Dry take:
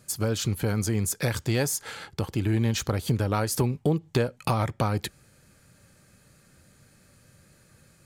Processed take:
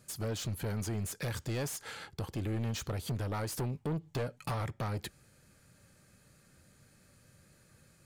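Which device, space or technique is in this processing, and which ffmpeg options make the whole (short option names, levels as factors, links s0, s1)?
saturation between pre-emphasis and de-emphasis: -filter_complex "[0:a]asettb=1/sr,asplit=3[s0][s1][s2];[s0]atrim=end=3.914[s3];[s1]atrim=start=3.91:end=4.61,asetpts=PTS-STARTPTS,afade=t=in:d=0.004:c=qsin,afade=t=out:st=0.696:d=0.004:c=qsin,aecho=1:1:6.9:0.38,atrim=end_sample=30870[s4];[s2]atrim=start=4.606[s5];[s3][s4]acrossfade=d=0.004:c1=hsin:c2=qsin[s6];[s6][s5]acrossfade=d=0.004:c1=qsin:c2=hsin,highshelf=f=4100:g=9,asoftclip=type=tanh:threshold=0.0562,highshelf=f=4100:g=-9,volume=0.562"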